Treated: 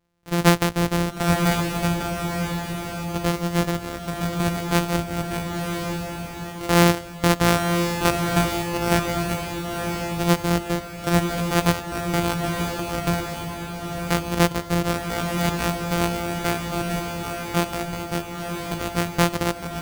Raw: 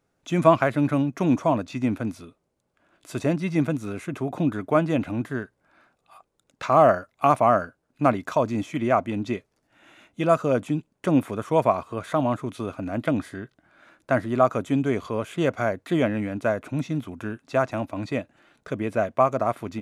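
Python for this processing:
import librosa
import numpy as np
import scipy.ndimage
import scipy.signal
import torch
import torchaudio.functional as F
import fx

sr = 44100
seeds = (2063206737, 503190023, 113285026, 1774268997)

y = np.r_[np.sort(x[:len(x) // 256 * 256].reshape(-1, 256), axis=1).ravel(), x[len(x) // 256 * 256:]]
y = fx.echo_diffused(y, sr, ms=997, feedback_pct=45, wet_db=-4.0)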